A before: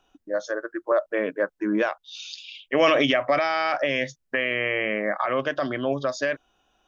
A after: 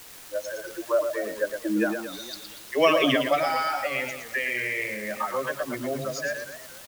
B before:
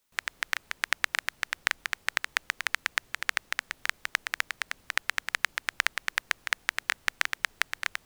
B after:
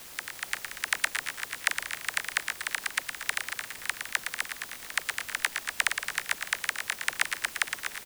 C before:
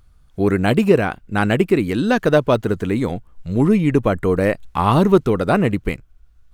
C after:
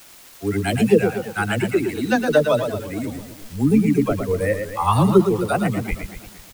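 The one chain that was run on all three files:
spectral dynamics exaggerated over time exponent 2
parametric band 9,100 Hz +10 dB 0.58 octaves
all-pass dispersion lows, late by 51 ms, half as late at 390 Hz
in parallel at −10 dB: bit-depth reduction 6 bits, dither triangular
on the sum: surface crackle 440 per second −34 dBFS
on a send: single-tap delay 113 ms −7 dB
on the sum: feedback echo with a swinging delay time 232 ms, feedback 37%, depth 193 cents, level −13 dB
level −1 dB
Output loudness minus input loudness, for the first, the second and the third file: −2.0, −0.5, −2.0 LU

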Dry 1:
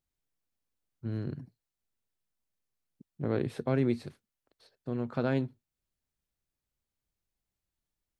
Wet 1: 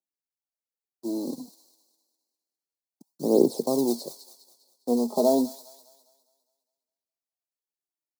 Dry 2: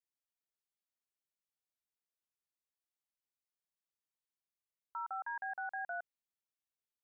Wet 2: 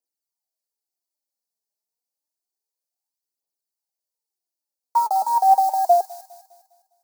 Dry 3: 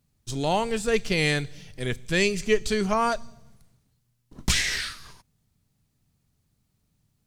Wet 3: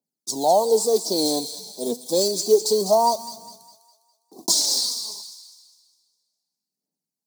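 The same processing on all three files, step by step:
one scale factor per block 5 bits
elliptic band-stop filter 890–4,400 Hz, stop band 40 dB
noise gate with hold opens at −48 dBFS
Bessel high-pass filter 360 Hz, order 8
in parallel at 0 dB: brickwall limiter −24 dBFS
on the sum: phase shifter 0.29 Hz, delay 4.9 ms, feedback 58%
on a send: delay with a high-pass on its return 203 ms, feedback 43%, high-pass 1,700 Hz, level −8 dB
on the sum: normalise the peak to −6 dBFS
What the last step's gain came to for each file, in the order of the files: +6.0, +20.5, +3.5 decibels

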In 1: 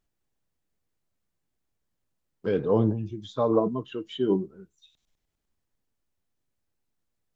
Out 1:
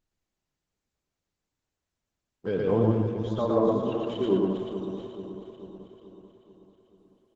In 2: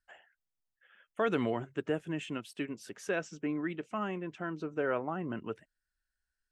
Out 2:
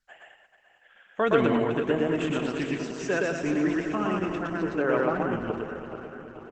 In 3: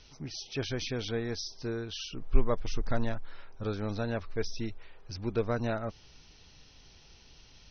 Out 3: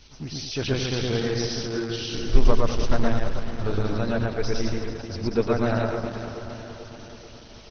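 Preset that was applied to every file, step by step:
feedback delay that plays each chunk backwards 218 ms, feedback 74%, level −9 dB
loudspeakers that aren't time-aligned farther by 40 metres −1 dB, 72 metres −9 dB
Opus 12 kbit/s 48,000 Hz
loudness normalisation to −27 LKFS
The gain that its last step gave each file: −3.0, +5.5, +5.5 decibels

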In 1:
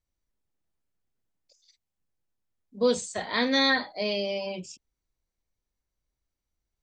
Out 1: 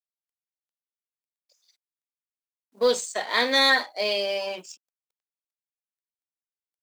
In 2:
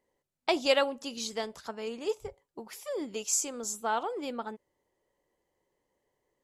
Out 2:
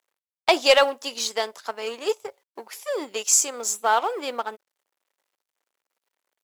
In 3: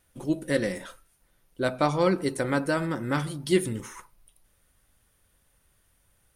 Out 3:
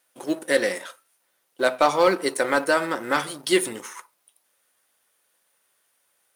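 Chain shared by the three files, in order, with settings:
mu-law and A-law mismatch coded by A
high-pass filter 470 Hz 12 dB per octave
in parallel at −7.5 dB: sine wavefolder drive 6 dB, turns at −10 dBFS
on the sum: loudness normalisation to −23 LKFS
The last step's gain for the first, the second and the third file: −1.0, +4.5, +2.0 decibels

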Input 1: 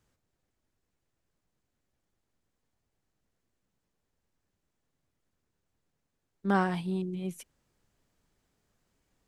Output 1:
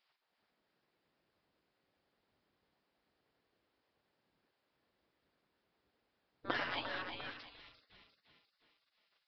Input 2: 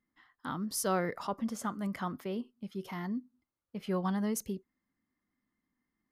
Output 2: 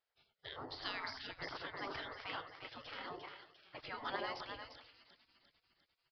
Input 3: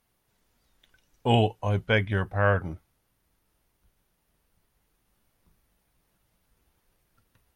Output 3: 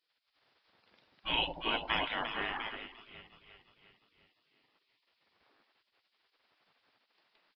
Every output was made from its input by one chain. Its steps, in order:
echo with a time of its own for lows and highs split 740 Hz, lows 94 ms, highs 350 ms, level −7 dB
gate on every frequency bin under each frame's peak −20 dB weak
downsampling to 11,025 Hz
level +5 dB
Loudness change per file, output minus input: −9.5, −9.5, −9.0 LU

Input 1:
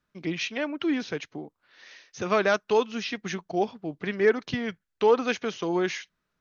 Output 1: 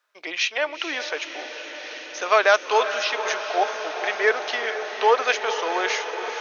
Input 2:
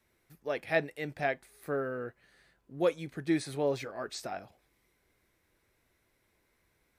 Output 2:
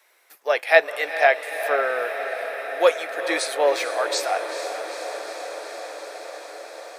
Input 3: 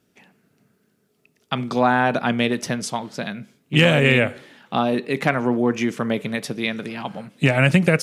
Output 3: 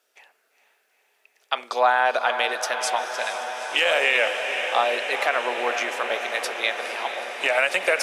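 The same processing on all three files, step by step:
high-pass filter 550 Hz 24 dB per octave
feedback delay with all-pass diffusion 451 ms, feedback 80%, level −10 dB
boost into a limiter +8.5 dB
loudness normalisation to −23 LKFS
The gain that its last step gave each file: −0.5, +6.5, −7.0 decibels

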